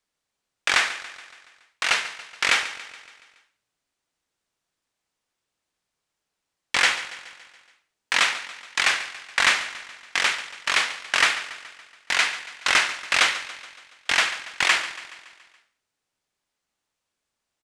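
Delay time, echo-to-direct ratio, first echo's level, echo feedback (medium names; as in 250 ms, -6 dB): 141 ms, -13.5 dB, -15.0 dB, 57%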